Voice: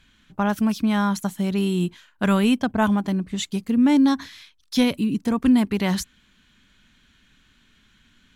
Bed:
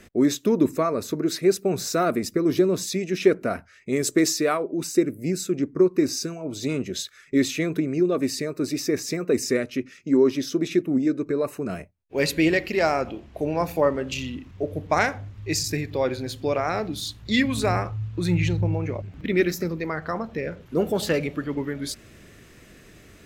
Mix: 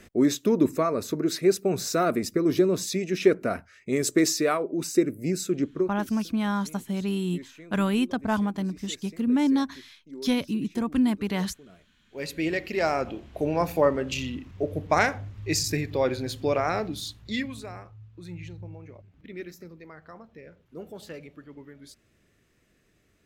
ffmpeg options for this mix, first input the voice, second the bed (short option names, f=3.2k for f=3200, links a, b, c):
-filter_complex "[0:a]adelay=5500,volume=-5.5dB[a];[1:a]volume=20dB,afade=t=out:st=5.66:d=0.29:silence=0.0944061,afade=t=in:st=11.93:d=1.35:silence=0.0841395,afade=t=out:st=16.66:d=1.01:silence=0.141254[b];[a][b]amix=inputs=2:normalize=0"